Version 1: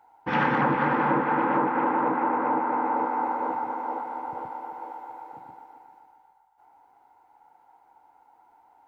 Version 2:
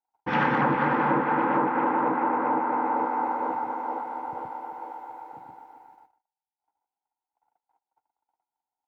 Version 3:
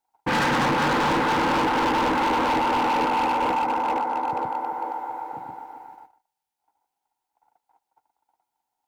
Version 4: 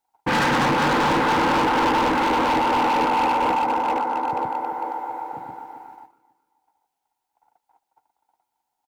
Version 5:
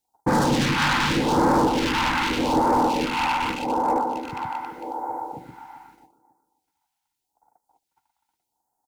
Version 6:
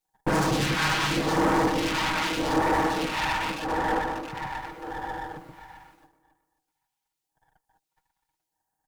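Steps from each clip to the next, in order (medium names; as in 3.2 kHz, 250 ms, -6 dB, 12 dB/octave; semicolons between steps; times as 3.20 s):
gate -53 dBFS, range -34 dB
hard clipper -28.5 dBFS, distortion -6 dB; trim +8.5 dB
feedback delay 272 ms, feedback 40%, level -20 dB; trim +2 dB
phase shifter stages 2, 0.83 Hz, lowest notch 430–2700 Hz; trim +3 dB
comb filter that takes the minimum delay 6.3 ms; trim -2 dB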